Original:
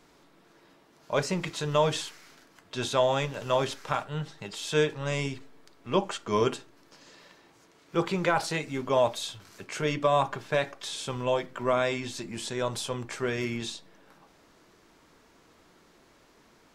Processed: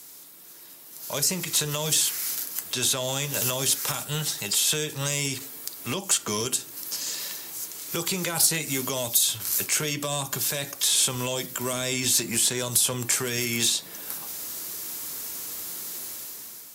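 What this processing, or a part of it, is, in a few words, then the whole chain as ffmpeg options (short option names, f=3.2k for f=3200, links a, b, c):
FM broadcast chain: -filter_complex "[0:a]highpass=f=57:w=0.5412,highpass=f=57:w=1.3066,dynaudnorm=f=800:g=3:m=11.5dB,acrossover=split=330|3100[a][b][c];[a]acompressor=threshold=-27dB:ratio=4[d];[b]acompressor=threshold=-30dB:ratio=4[e];[c]acompressor=threshold=-41dB:ratio=4[f];[d][e][f]amix=inputs=3:normalize=0,aemphasis=mode=production:type=75fm,alimiter=limit=-19dB:level=0:latency=1:release=182,asoftclip=type=hard:threshold=-22dB,lowpass=f=15k:w=0.5412,lowpass=f=15k:w=1.3066,aemphasis=mode=production:type=75fm"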